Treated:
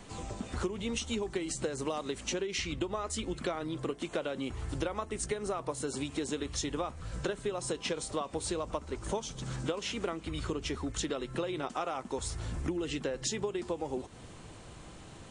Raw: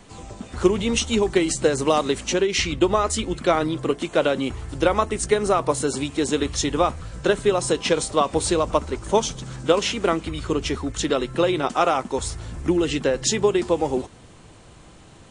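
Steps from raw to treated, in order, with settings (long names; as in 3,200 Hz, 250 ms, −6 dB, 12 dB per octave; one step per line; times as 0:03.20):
downward compressor 6 to 1, threshold −30 dBFS, peak gain reduction 17.5 dB
level −2 dB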